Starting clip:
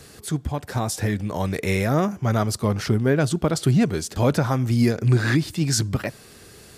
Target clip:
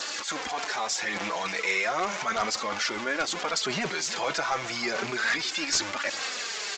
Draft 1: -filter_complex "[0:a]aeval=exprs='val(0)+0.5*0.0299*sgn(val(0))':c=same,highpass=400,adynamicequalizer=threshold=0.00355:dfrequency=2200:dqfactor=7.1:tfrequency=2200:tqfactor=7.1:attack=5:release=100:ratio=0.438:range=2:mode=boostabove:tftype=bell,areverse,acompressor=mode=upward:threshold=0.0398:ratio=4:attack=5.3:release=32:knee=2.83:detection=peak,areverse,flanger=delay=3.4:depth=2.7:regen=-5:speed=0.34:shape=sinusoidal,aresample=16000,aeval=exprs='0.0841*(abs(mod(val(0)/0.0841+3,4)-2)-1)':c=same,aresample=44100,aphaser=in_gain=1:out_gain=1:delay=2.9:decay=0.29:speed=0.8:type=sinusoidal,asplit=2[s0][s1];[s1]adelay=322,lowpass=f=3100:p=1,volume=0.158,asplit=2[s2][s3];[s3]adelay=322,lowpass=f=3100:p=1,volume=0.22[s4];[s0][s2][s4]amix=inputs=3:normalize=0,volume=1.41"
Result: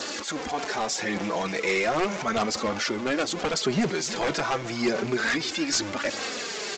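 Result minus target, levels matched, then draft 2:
500 Hz band +4.5 dB
-filter_complex "[0:a]aeval=exprs='val(0)+0.5*0.0299*sgn(val(0))':c=same,highpass=870,adynamicequalizer=threshold=0.00355:dfrequency=2200:dqfactor=7.1:tfrequency=2200:tqfactor=7.1:attack=5:release=100:ratio=0.438:range=2:mode=boostabove:tftype=bell,areverse,acompressor=mode=upward:threshold=0.0398:ratio=4:attack=5.3:release=32:knee=2.83:detection=peak,areverse,flanger=delay=3.4:depth=2.7:regen=-5:speed=0.34:shape=sinusoidal,aresample=16000,aeval=exprs='0.0841*(abs(mod(val(0)/0.0841+3,4)-2)-1)':c=same,aresample=44100,aphaser=in_gain=1:out_gain=1:delay=2.9:decay=0.29:speed=0.8:type=sinusoidal,asplit=2[s0][s1];[s1]adelay=322,lowpass=f=3100:p=1,volume=0.158,asplit=2[s2][s3];[s3]adelay=322,lowpass=f=3100:p=1,volume=0.22[s4];[s0][s2][s4]amix=inputs=3:normalize=0,volume=1.41"

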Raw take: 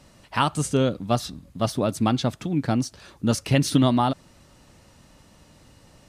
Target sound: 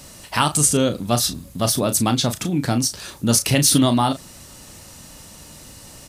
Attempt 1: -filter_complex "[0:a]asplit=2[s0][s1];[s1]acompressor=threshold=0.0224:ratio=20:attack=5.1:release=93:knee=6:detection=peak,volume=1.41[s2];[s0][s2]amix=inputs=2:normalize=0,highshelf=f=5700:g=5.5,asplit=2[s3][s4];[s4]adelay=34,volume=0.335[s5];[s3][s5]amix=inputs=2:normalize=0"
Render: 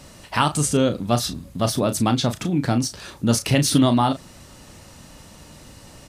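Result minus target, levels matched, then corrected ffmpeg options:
8 kHz band -5.0 dB
-filter_complex "[0:a]asplit=2[s0][s1];[s1]acompressor=threshold=0.0224:ratio=20:attack=5.1:release=93:knee=6:detection=peak,volume=1.41[s2];[s0][s2]amix=inputs=2:normalize=0,highshelf=f=5700:g=17,asplit=2[s3][s4];[s4]adelay=34,volume=0.335[s5];[s3][s5]amix=inputs=2:normalize=0"

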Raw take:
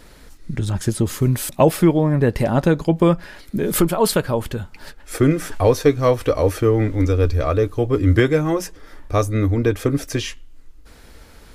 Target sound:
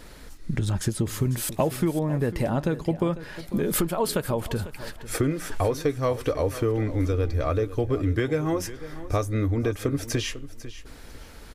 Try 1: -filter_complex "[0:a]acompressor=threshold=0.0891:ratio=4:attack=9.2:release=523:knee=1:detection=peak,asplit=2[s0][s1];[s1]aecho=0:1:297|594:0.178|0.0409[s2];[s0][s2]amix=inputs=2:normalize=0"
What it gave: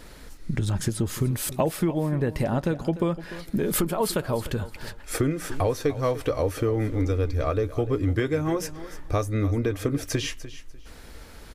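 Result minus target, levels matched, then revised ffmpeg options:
echo 201 ms early
-filter_complex "[0:a]acompressor=threshold=0.0891:ratio=4:attack=9.2:release=523:knee=1:detection=peak,asplit=2[s0][s1];[s1]aecho=0:1:498|996:0.178|0.0409[s2];[s0][s2]amix=inputs=2:normalize=0"

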